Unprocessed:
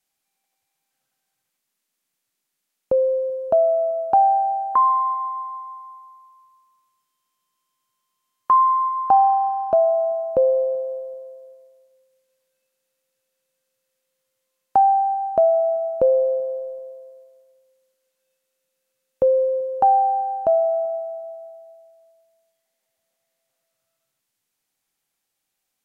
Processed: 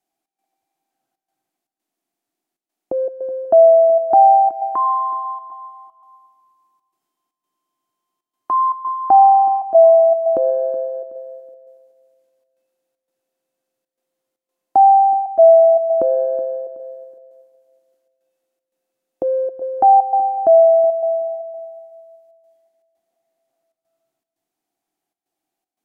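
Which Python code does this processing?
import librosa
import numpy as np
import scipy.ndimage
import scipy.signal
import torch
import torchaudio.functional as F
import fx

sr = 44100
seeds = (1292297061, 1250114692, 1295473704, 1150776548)

p1 = fx.transient(x, sr, attack_db=-4, sustain_db=6)
p2 = fx.step_gate(p1, sr, bpm=117, pattern='xx.xxxxxx.x', floor_db=-12.0, edge_ms=4.5)
p3 = fx.small_body(p2, sr, hz=(330.0, 690.0), ring_ms=25, db=18)
p4 = p3 + fx.echo_feedback(p3, sr, ms=373, feedback_pct=31, wet_db=-16, dry=0)
y = F.gain(torch.from_numpy(p4), -7.0).numpy()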